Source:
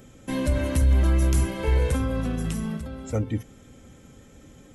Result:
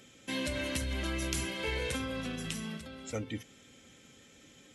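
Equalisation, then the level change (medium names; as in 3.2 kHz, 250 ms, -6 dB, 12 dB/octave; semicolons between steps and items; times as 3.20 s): frequency weighting D; -8.0 dB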